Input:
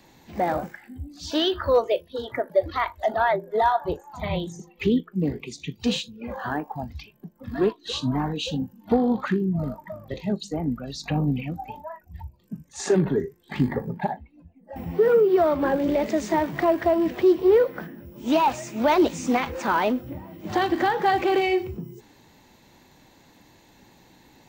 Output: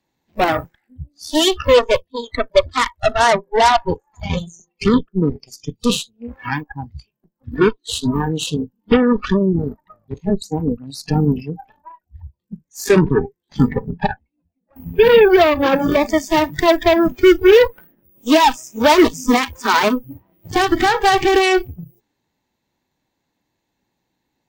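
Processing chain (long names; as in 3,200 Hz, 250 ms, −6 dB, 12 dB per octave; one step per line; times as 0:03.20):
harmonic generator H 5 −31 dB, 6 −29 dB, 7 −22 dB, 8 −14 dB, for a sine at −10 dBFS
noise reduction from a noise print of the clip's start 22 dB
level +7.5 dB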